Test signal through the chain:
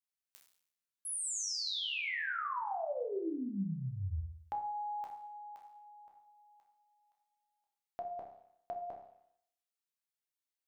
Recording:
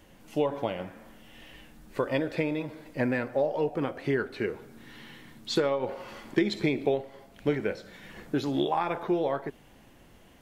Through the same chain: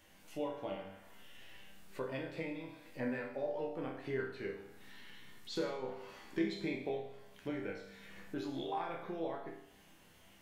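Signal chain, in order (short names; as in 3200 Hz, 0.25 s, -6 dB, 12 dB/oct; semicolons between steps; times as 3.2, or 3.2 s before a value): resonator bank C2 major, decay 0.66 s; mismatched tape noise reduction encoder only; gain +4 dB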